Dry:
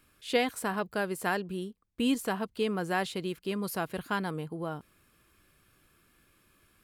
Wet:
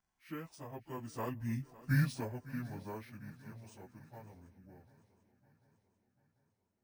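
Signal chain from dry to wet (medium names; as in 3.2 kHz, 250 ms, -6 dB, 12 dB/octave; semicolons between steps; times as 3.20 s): frequency-domain pitch shifter -9 st; Doppler pass-by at 1.73 s, 19 m/s, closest 1.2 m; on a send: shuffle delay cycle 742 ms, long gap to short 3:1, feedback 49%, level -19 dB; on the sum: careless resampling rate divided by 3×, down filtered, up hold; trim +11 dB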